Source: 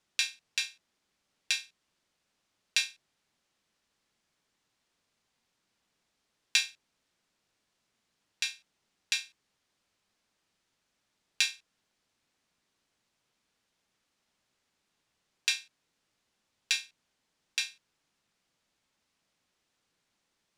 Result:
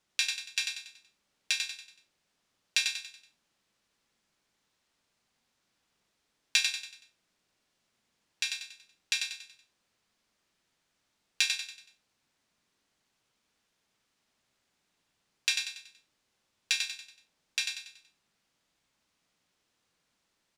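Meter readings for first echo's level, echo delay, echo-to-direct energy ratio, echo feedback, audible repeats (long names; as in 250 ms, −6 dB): −5.0 dB, 94 ms, −4.0 dB, 41%, 4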